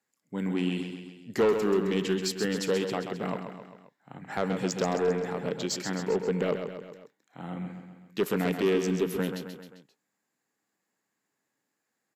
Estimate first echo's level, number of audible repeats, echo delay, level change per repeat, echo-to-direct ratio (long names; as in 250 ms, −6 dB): −7.5 dB, 4, 132 ms, −5.0 dB, −6.0 dB